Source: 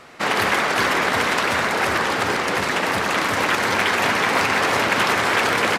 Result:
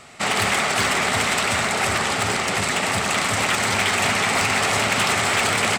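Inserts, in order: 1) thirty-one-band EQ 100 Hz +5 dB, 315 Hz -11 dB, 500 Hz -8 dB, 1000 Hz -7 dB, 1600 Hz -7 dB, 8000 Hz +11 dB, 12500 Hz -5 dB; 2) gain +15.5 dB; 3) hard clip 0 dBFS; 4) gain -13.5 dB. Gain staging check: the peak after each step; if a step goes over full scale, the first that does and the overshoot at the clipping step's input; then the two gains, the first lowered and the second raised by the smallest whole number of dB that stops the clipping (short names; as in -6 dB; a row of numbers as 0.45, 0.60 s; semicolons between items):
-7.0, +8.5, 0.0, -13.5 dBFS; step 2, 8.5 dB; step 2 +6.5 dB, step 4 -4.5 dB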